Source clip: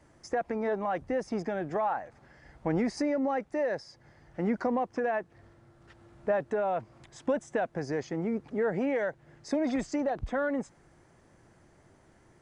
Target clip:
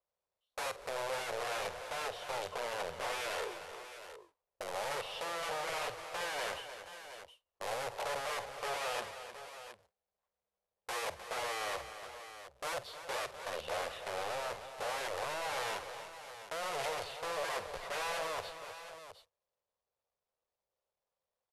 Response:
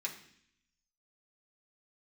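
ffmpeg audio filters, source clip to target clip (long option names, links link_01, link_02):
-filter_complex "[0:a]aeval=exprs='val(0)+0.5*0.0075*sgn(val(0))':channel_layout=same,agate=range=-44dB:threshold=-36dB:ratio=16:detection=peak,alimiter=level_in=3dB:limit=-24dB:level=0:latency=1:release=201,volume=-3dB,aeval=exprs='(mod(47.3*val(0)+1,2)-1)/47.3':channel_layout=same,lowshelf=frequency=660:width_type=q:width=3:gain=-11,asetrate=25442,aresample=44100,asplit=2[link_01][link_02];[link_02]aecho=0:1:47|233|308|544|716:0.188|0.126|0.282|0.106|0.251[link_03];[link_01][link_03]amix=inputs=2:normalize=0,adynamicequalizer=threshold=0.002:dfrequency=5900:dqfactor=0.7:tfrequency=5900:tqfactor=0.7:attack=5:release=100:ratio=0.375:range=2.5:mode=cutabove:tftype=highshelf,volume=-1dB"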